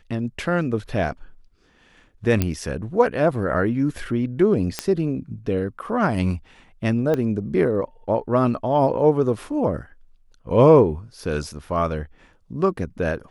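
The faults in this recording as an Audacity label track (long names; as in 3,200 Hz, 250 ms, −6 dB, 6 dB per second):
2.420000	2.420000	click −7 dBFS
4.790000	4.790000	click −7 dBFS
7.140000	7.140000	click −12 dBFS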